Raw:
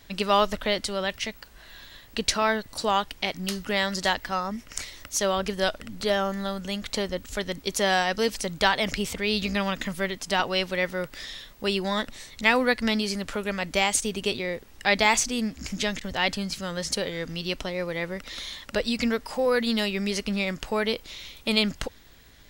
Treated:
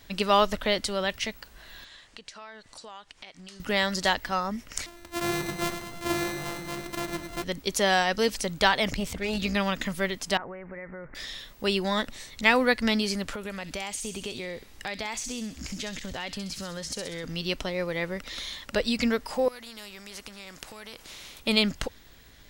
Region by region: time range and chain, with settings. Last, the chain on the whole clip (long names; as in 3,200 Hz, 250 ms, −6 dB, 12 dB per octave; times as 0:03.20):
0:01.84–0:03.60: Chebyshev low-pass filter 8,500 Hz, order 3 + low-shelf EQ 490 Hz −10.5 dB + downward compressor 4 to 1, threshold −44 dBFS
0:04.86–0:07.44: samples sorted by size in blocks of 128 samples + flanger 1.9 Hz, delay 6 ms, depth 7.7 ms, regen +73% + repeating echo 104 ms, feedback 59%, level −8 dB
0:08.90–0:09.40: low-shelf EQ 350 Hz +7 dB + tube saturation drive 22 dB, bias 0.75
0:10.37–0:11.15: downward compressor, threshold −36 dBFS + Butterworth low-pass 2,200 Hz 72 dB per octave + transient designer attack −1 dB, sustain +5 dB
0:13.35–0:17.24: downward compressor 4 to 1, threshold −32 dBFS + delay with a high-pass on its return 65 ms, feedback 57%, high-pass 4,200 Hz, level −4 dB
0:19.48–0:21.40: downward compressor 2.5 to 1, threshold −34 dBFS + high-shelf EQ 10,000 Hz −3 dB + every bin compressed towards the loudest bin 2 to 1
whole clip: no processing